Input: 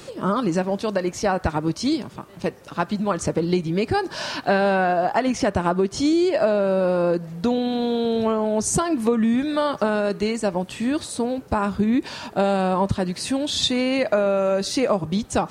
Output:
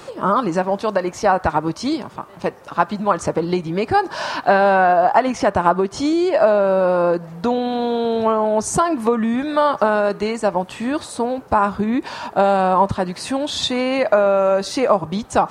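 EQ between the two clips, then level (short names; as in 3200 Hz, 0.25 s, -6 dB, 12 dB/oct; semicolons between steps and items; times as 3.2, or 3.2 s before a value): bell 960 Hz +10.5 dB 1.8 oct; -1.5 dB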